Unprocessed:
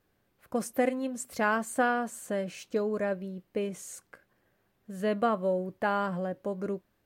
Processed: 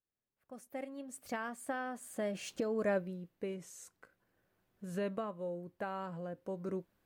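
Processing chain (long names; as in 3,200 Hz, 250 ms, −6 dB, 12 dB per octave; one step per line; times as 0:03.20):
source passing by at 0:02.90, 18 m/s, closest 2.8 metres
camcorder AGC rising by 11 dB per second
level −1.5 dB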